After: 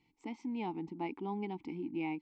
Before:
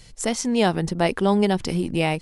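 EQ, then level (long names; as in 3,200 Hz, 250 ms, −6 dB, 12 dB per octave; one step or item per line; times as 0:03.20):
formant filter u
linear-phase brick-wall low-pass 8,400 Hz
high-shelf EQ 6,200 Hz −9 dB
−4.0 dB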